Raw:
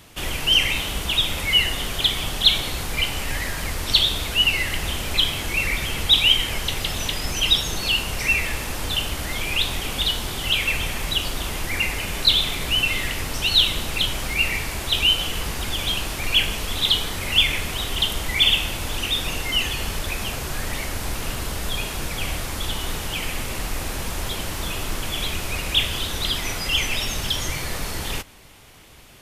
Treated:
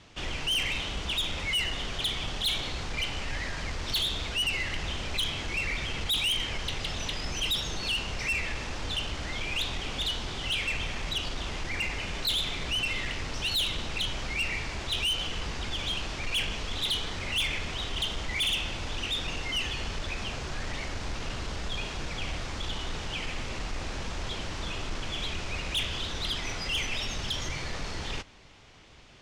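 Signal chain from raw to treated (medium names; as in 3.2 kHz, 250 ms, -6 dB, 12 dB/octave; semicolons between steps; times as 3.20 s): low-pass 6.4 kHz 24 dB/octave; saturation -18.5 dBFS, distortion -10 dB; trim -5.5 dB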